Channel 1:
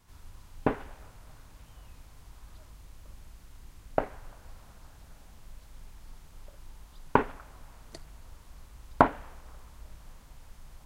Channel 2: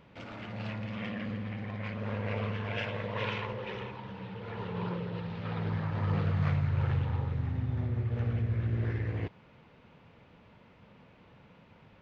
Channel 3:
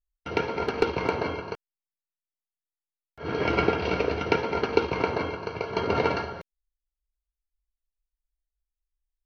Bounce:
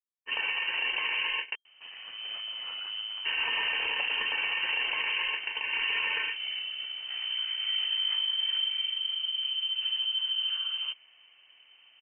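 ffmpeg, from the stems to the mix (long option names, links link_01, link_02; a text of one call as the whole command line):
ffmpeg -i stem1.wav -i stem2.wav -i stem3.wav -filter_complex "[1:a]lowpass=frequency=1400:poles=1,adelay=1650,volume=-0.5dB[link_01];[2:a]highpass=120,agate=range=-28dB:threshold=-34dB:ratio=16:detection=peak,acontrast=63,volume=-0.5dB[link_02];[link_01][link_02]amix=inputs=2:normalize=0,lowpass=frequency=2700:width_type=q:width=0.5098,lowpass=frequency=2700:width_type=q:width=0.6013,lowpass=frequency=2700:width_type=q:width=0.9,lowpass=frequency=2700:width_type=q:width=2.563,afreqshift=-3200,alimiter=limit=-13.5dB:level=0:latency=1:release=38,volume=0dB,alimiter=limit=-21dB:level=0:latency=1:release=139" out.wav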